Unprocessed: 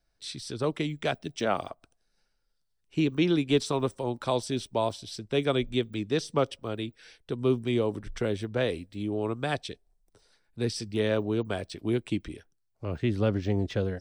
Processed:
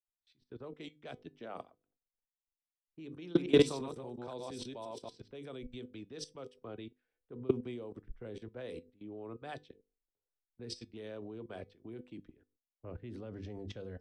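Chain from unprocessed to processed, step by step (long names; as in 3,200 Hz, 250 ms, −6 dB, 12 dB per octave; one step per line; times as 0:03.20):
0:03.23–0:05.28: delay that plays each chunk backwards 116 ms, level −0.5 dB
low-pass that shuts in the quiet parts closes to 970 Hz, open at −22.5 dBFS
parametric band 430 Hz +3.5 dB 1.4 octaves
mains-hum notches 50/100/150/200/250/300/350/400/450/500 Hz
output level in coarse steps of 18 dB
tuned comb filter 250 Hz, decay 0.2 s, harmonics all, mix 50%
multiband upward and downward expander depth 70%
level −3 dB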